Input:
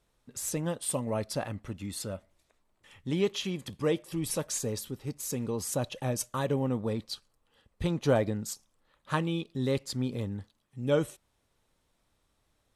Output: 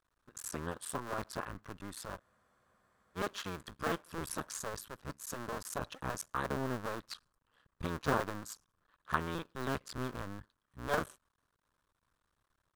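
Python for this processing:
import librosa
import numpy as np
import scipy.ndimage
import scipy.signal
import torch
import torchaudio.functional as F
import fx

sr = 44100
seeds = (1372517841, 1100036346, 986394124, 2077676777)

y = fx.cycle_switch(x, sr, every=2, mode='muted')
y = fx.band_shelf(y, sr, hz=1300.0, db=9.5, octaves=1.0)
y = fx.spec_freeze(y, sr, seeds[0], at_s=2.22, hold_s=0.94)
y = y * librosa.db_to_amplitude(-6.0)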